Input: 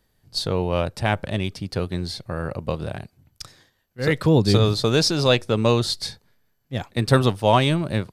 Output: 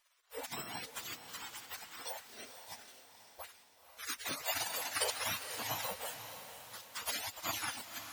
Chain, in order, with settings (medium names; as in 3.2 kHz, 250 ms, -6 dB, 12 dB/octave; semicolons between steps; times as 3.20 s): spectrum inverted on a logarithmic axis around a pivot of 1.2 kHz; spectral gate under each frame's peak -30 dB weak; echo that smears into a reverb 505 ms, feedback 49%, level -10 dB; trim +9.5 dB